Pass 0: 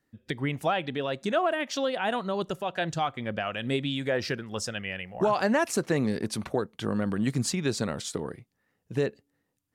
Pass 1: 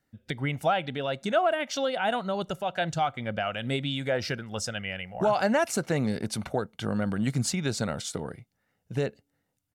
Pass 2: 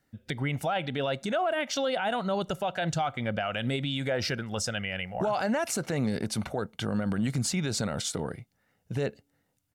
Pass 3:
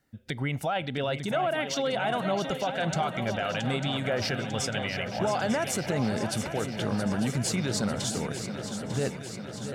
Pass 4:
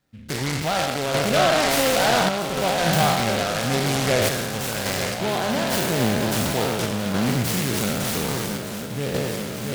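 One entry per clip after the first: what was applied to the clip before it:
comb 1.4 ms, depth 37%
limiter -24 dBFS, peak gain reduction 11 dB; gain +3.5 dB
swung echo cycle 0.897 s, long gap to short 3:1, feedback 66%, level -9.5 dB
spectral trails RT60 1.82 s; random-step tremolo; noise-modulated delay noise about 2300 Hz, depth 0.087 ms; gain +5.5 dB

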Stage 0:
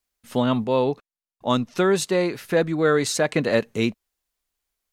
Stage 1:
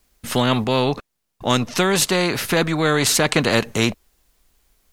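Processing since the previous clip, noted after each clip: low shelf 400 Hz +10 dB; spectral compressor 2:1; gain +1.5 dB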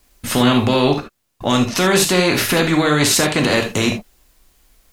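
limiter -12 dBFS, peak gain reduction 10 dB; reverb, pre-delay 3 ms, DRR 3 dB; gain +5 dB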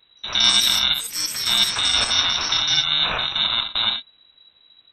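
FFT order left unsorted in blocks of 64 samples; inverted band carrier 3900 Hz; echoes that change speed 0.169 s, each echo +7 st, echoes 3, each echo -6 dB; gain -1 dB

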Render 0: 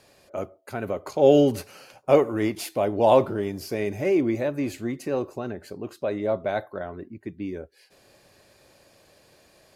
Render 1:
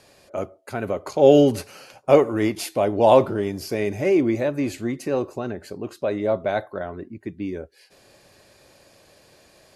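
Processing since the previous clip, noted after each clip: elliptic low-pass 12000 Hz, stop band 40 dB; gain +4 dB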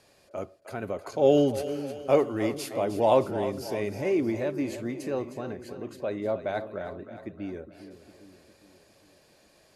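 split-band echo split 390 Hz, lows 0.406 s, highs 0.31 s, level -11.5 dB; gain -7 dB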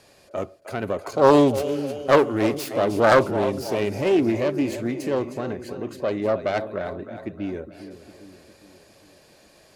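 self-modulated delay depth 0.4 ms; gain +6.5 dB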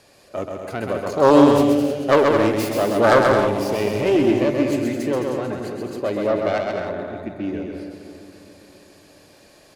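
resonator 290 Hz, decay 0.88 s, mix 60%; on a send: bouncing-ball echo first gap 0.13 s, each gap 0.65×, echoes 5; on the sum: maximiser +9.5 dB; gain -1 dB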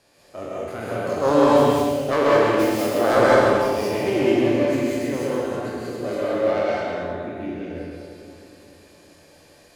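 spectral trails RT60 0.84 s; non-linear reverb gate 0.23 s rising, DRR -4.5 dB; gain -9 dB

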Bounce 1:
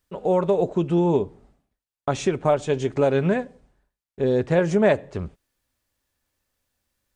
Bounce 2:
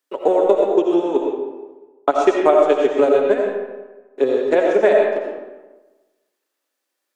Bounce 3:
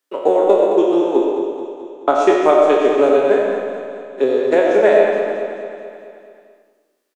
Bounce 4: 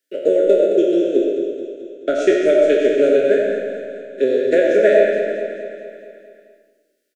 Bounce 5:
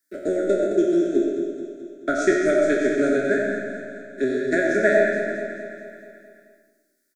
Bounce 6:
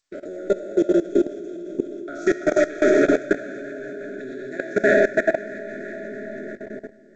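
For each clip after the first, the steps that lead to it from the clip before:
steep high-pass 270 Hz 48 dB/oct; transient shaper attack +11 dB, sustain -7 dB; reverb RT60 1.2 s, pre-delay 45 ms, DRR 0 dB; gain -2 dB
spectral trails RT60 0.51 s; on a send: feedback echo 0.216 s, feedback 58%, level -8.5 dB
Chebyshev band-stop 660–1400 Hz, order 5
fixed phaser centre 1200 Hz, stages 4; gain +5 dB
split-band echo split 460 Hz, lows 0.625 s, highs 0.331 s, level -3 dB; level quantiser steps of 18 dB; gain +3 dB; G.722 64 kbps 16000 Hz

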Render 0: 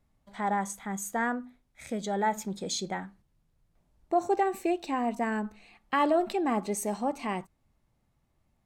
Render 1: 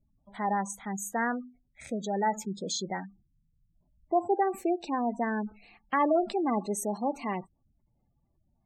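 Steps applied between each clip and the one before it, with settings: spectral gate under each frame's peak -20 dB strong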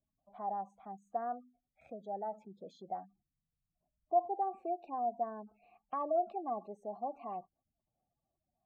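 tilt -4 dB/oct; in parallel at +1 dB: compressor, threshold -31 dBFS, peak gain reduction 13.5 dB; on the sum: vowel filter a; gain -5 dB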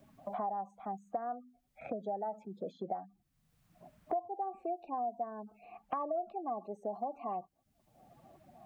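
three-band squash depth 100%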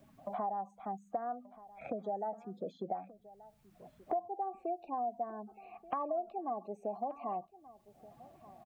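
echo 1.18 s -19 dB

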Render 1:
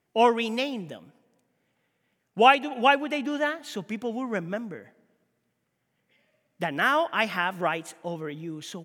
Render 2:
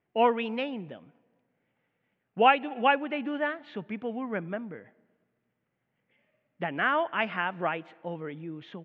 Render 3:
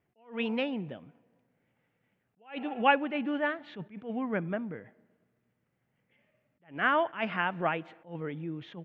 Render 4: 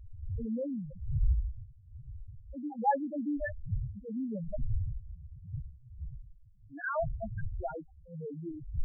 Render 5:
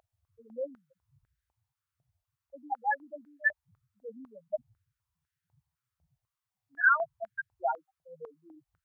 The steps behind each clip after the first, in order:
LPF 2900 Hz 24 dB/oct; gain -3 dB
bell 67 Hz +6.5 dB 2.6 oct; attack slew limiter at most 190 dB/s
wind noise 120 Hz -32 dBFS; loudest bins only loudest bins 2
stepped high-pass 4 Hz 680–1600 Hz; gain +3 dB

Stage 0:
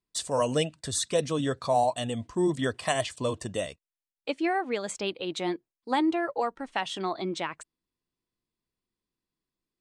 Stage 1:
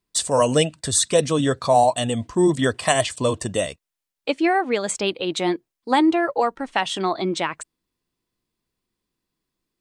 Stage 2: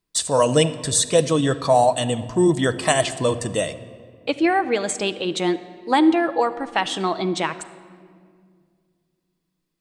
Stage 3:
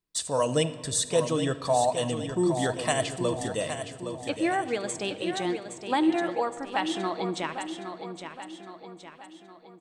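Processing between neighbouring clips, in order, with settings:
dynamic EQ 8300 Hz, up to +4 dB, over -52 dBFS, Q 3; gain +8 dB
shoebox room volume 3800 m³, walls mixed, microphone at 0.61 m
feedback echo 0.816 s, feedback 49%, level -8.5 dB; gain -8 dB

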